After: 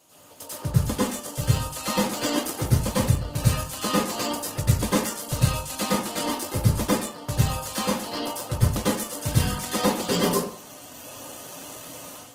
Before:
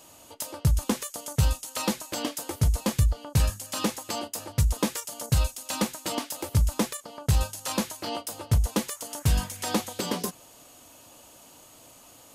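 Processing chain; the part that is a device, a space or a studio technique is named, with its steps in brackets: far-field microphone of a smart speaker (reverb RT60 0.50 s, pre-delay 90 ms, DRR -9 dB; HPF 97 Hz 12 dB/oct; AGC gain up to 10 dB; gain -6 dB; Opus 16 kbps 48000 Hz)

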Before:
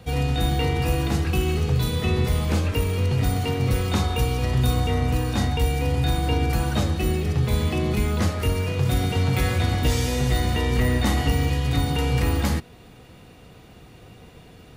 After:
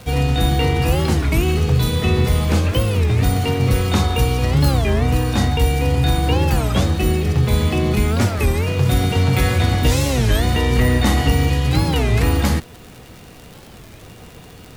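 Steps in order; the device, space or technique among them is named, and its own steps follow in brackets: warped LP (record warp 33 1/3 rpm, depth 250 cents; crackle 100/s -35 dBFS; pink noise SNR 32 dB); gain +5.5 dB

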